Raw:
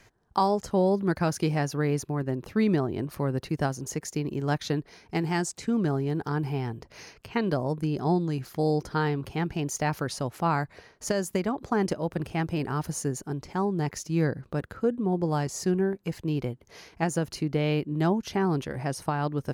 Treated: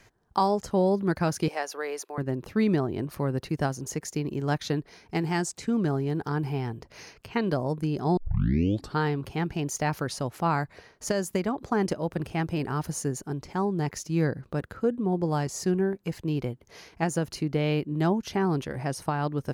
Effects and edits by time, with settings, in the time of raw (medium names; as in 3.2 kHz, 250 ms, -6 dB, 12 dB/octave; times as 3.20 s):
1.48–2.18 s: high-pass 450 Hz 24 dB/octave
8.17 s: tape start 0.81 s